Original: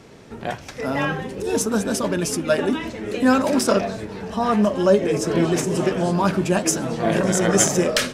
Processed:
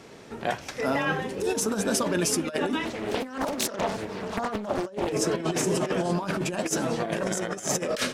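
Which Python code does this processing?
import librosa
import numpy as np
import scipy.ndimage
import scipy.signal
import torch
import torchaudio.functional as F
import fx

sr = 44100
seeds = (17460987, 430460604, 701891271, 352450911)

y = fx.low_shelf(x, sr, hz=180.0, db=-9.0)
y = fx.over_compress(y, sr, threshold_db=-24.0, ratio=-0.5)
y = fx.doppler_dist(y, sr, depth_ms=0.88, at=(2.85, 5.13))
y = y * 10.0 ** (-2.5 / 20.0)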